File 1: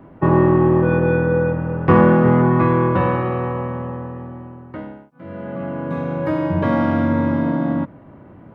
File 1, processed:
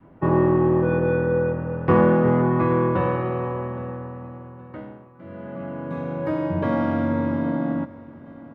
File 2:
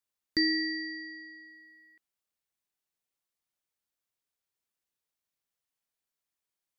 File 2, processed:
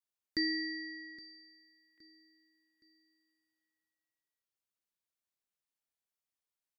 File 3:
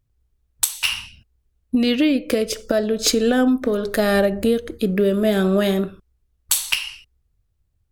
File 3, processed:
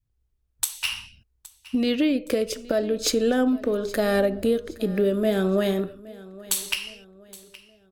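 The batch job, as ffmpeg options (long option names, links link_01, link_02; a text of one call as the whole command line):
ffmpeg -i in.wav -filter_complex "[0:a]adynamicequalizer=threshold=0.0562:dfrequency=470:dqfactor=0.94:tfrequency=470:tqfactor=0.94:attack=5:release=100:ratio=0.375:range=1.5:mode=boostabove:tftype=bell,asplit=2[link_01][link_02];[link_02]aecho=0:1:818|1636|2454:0.1|0.039|0.0152[link_03];[link_01][link_03]amix=inputs=2:normalize=0,volume=-6dB" out.wav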